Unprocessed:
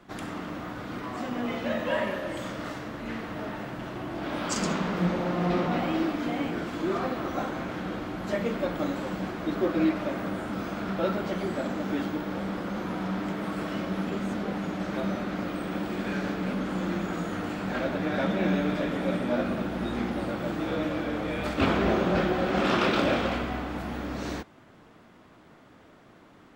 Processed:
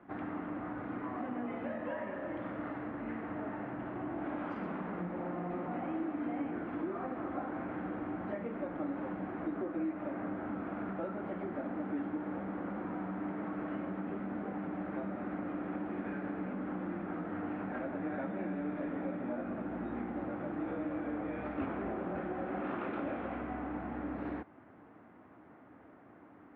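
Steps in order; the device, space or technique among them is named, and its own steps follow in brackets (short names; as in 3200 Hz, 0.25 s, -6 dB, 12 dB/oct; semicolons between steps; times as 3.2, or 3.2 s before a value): bass amplifier (compressor 4:1, threshold -33 dBFS, peak gain reduction 12 dB; speaker cabinet 65–2100 Hz, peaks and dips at 150 Hz -4 dB, 290 Hz +6 dB, 780 Hz +4 dB); gain -4.5 dB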